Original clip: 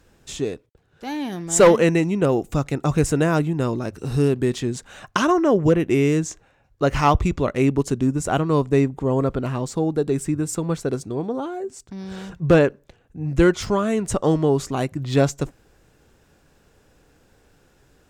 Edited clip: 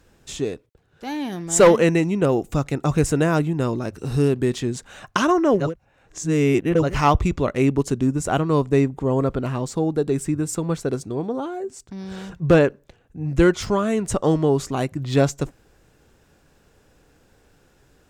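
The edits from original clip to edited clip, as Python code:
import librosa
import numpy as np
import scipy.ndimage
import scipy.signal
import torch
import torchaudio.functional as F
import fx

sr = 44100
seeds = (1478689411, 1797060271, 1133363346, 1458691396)

y = fx.edit(x, sr, fx.reverse_span(start_s=5.64, length_s=1.21, crossfade_s=0.24), tone=tone)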